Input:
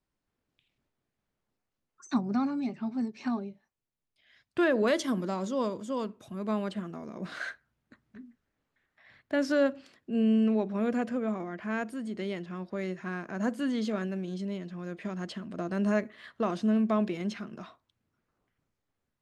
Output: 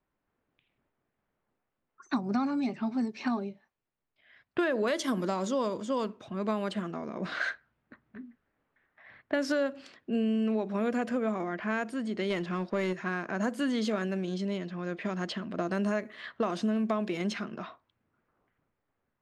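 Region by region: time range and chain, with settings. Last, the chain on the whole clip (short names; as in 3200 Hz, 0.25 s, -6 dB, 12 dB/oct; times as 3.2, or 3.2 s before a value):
12.3–12.93 sample leveller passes 1 + mismatched tape noise reduction decoder only
whole clip: low-pass opened by the level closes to 2000 Hz, open at -27.5 dBFS; low shelf 260 Hz -7 dB; compressor 6:1, threshold -32 dBFS; gain +6.5 dB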